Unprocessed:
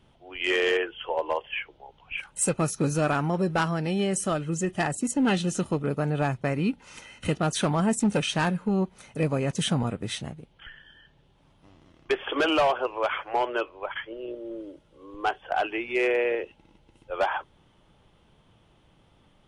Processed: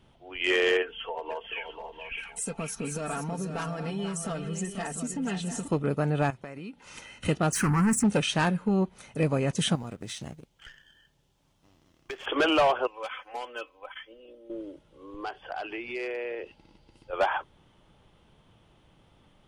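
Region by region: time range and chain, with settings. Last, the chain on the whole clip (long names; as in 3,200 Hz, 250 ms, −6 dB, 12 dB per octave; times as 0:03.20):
0:00.82–0:05.68: comb filter 4.4 ms, depth 72% + downward compressor 3 to 1, threshold −33 dBFS + multi-tap delay 486/694 ms −8.5/−10.5 dB
0:06.30–0:06.85: low-shelf EQ 150 Hz −11 dB + downward compressor 10 to 1, threshold −36 dBFS
0:07.52–0:08.04: leveller curve on the samples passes 2 + phaser with its sweep stopped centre 1,500 Hz, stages 4
0:09.75–0:12.26: mu-law and A-law mismatch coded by A + parametric band 6,100 Hz +8 dB 1.2 octaves + downward compressor 12 to 1, threshold −33 dBFS
0:12.87–0:14.50: first-order pre-emphasis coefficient 0.8 + comb filter 3.9 ms, depth 80% + one half of a high-frequency compander decoder only
0:15.22–0:17.13: parametric band 4,700 Hz +14.5 dB 0.21 octaves + downward compressor 3 to 1, threshold −34 dBFS
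whole clip: no processing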